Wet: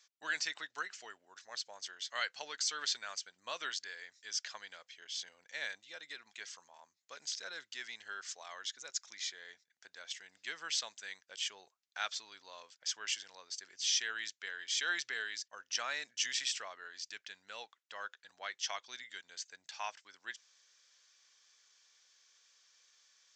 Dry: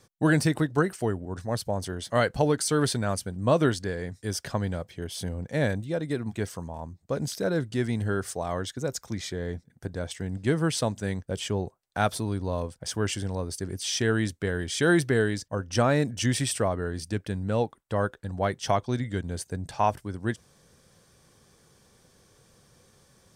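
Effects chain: Butterworth band-pass 5600 Hz, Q 0.53; downsampling 16000 Hz; gain -1.5 dB

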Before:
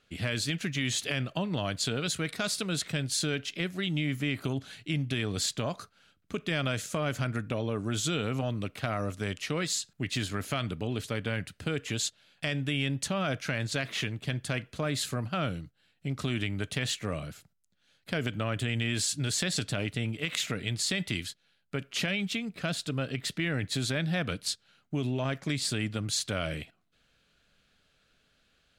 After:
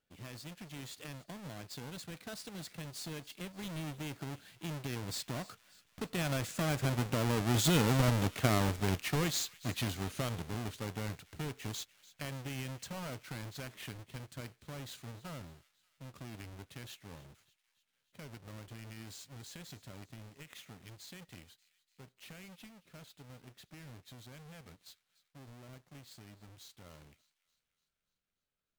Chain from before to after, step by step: half-waves squared off; Doppler pass-by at 8.04, 18 m/s, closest 16 m; thin delay 0.293 s, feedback 57%, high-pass 1900 Hz, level -18.5 dB; gain -1.5 dB

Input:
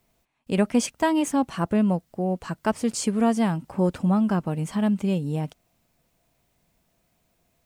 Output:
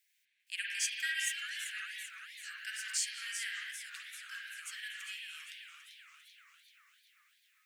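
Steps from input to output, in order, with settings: steep high-pass 1600 Hz 96 dB/oct; reverb, pre-delay 43 ms, DRR -2.5 dB; warbling echo 0.393 s, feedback 61%, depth 193 cents, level -9.5 dB; gain -3.5 dB

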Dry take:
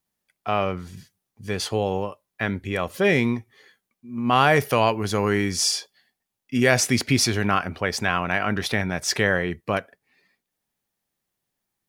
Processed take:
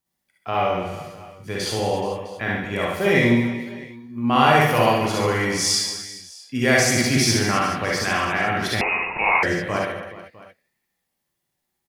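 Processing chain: reverse bouncing-ball echo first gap 60 ms, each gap 1.4×, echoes 5; non-linear reverb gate 90 ms rising, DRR -1.5 dB; 8.81–9.43 inverted band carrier 2700 Hz; gain -3 dB

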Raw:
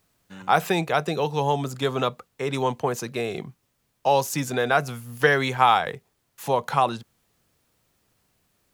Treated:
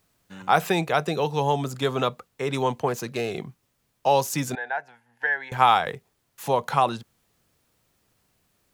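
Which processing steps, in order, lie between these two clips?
2.88–3.31 self-modulated delay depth 0.067 ms; 4.55–5.52 double band-pass 1200 Hz, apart 0.95 oct

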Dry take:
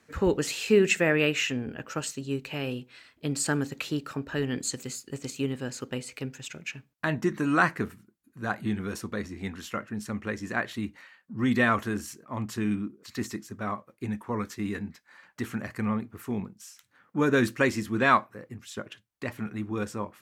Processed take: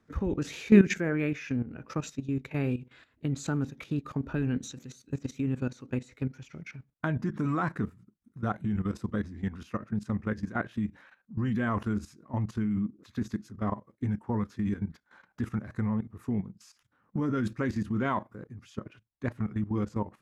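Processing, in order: formant shift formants -2 st; tilt -2.5 dB/oct; level quantiser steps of 14 dB

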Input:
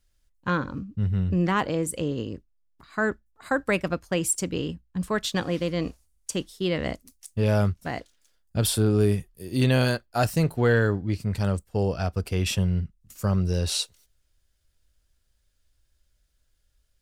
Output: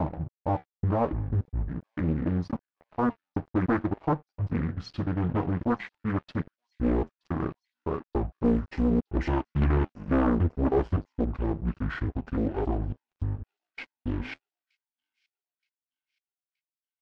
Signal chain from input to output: slices in reverse order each 0.281 s, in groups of 3; gate with hold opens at -59 dBFS; tone controls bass -7 dB, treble -13 dB; comb 7 ms, depth 60%; in parallel at -1.5 dB: compressor 10:1, threshold -34 dBFS, peak gain reduction 17 dB; on the sum: soft clip -15.5 dBFS, distortion -18 dB; pitch shift -10 st; flange 0.74 Hz, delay 8.5 ms, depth 6 ms, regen -78%; crossover distortion -46.5 dBFS; tape spacing loss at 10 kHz 28 dB; on a send: thin delay 0.923 s, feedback 46%, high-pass 4700 Hz, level -23.5 dB; on the sum: Doppler distortion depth 0.99 ms; gain +6.5 dB

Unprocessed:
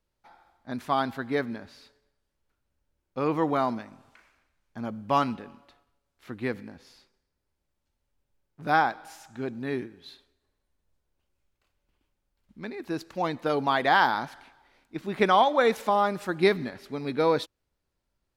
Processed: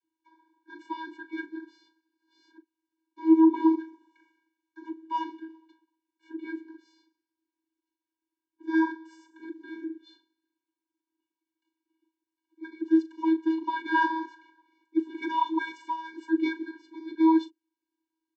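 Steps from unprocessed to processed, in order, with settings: 1.61–3.75 reverse delay 0.483 s, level -3 dB; doubler 38 ms -12.5 dB; vocoder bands 32, square 322 Hz

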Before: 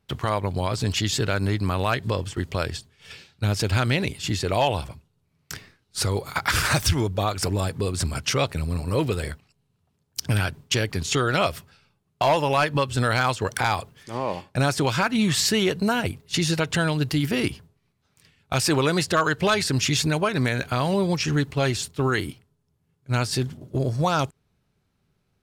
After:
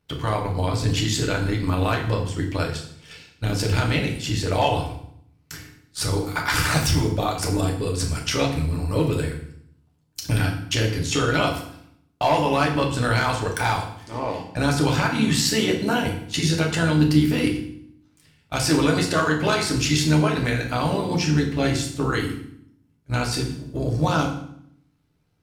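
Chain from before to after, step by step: AM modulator 70 Hz, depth 45%; FDN reverb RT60 0.66 s, low-frequency decay 1.45×, high-frequency decay 0.9×, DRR -0.5 dB

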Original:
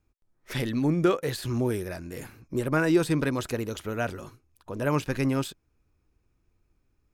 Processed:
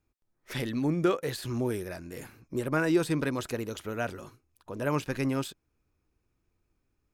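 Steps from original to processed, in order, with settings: low shelf 100 Hz -5.5 dB; gain -2.5 dB

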